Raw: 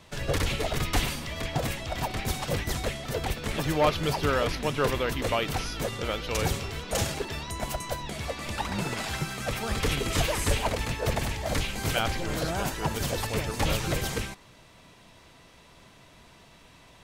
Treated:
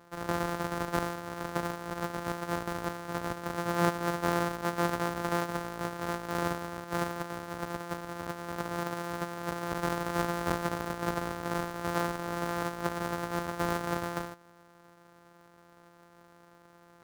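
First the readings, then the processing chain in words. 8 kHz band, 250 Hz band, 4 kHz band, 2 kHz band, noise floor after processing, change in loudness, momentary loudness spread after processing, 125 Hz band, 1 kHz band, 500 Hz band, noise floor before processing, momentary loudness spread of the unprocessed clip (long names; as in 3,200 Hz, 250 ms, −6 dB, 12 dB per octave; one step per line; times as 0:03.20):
−10.0 dB, −1.0 dB, −12.0 dB, −4.5 dB, −59 dBFS, −4.5 dB, 7 LU, −7.5 dB, −0.5 dB, −4.0 dB, −54 dBFS, 7 LU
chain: samples sorted by size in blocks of 256 samples
high-pass filter 380 Hz 6 dB per octave
high shelf with overshoot 1,900 Hz −7 dB, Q 1.5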